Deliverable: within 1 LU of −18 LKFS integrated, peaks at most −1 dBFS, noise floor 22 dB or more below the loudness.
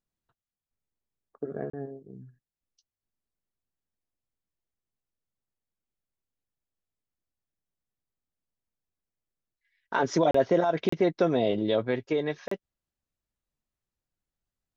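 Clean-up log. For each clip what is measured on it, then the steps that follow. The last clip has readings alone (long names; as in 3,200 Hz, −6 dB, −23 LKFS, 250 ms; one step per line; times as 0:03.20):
number of dropouts 4; longest dropout 34 ms; integrated loudness −27.0 LKFS; sample peak −13.0 dBFS; target loudness −18.0 LKFS
→ repair the gap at 0:01.70/0:10.31/0:10.89/0:12.48, 34 ms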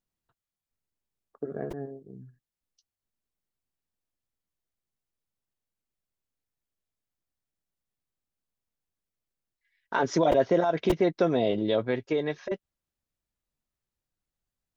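number of dropouts 0; integrated loudness −27.0 LKFS; sample peak −12.0 dBFS; target loudness −18.0 LKFS
→ level +9 dB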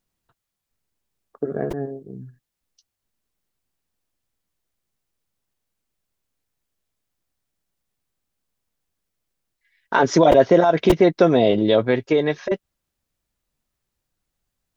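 integrated loudness −18.0 LKFS; sample peak −3.0 dBFS; background noise floor −82 dBFS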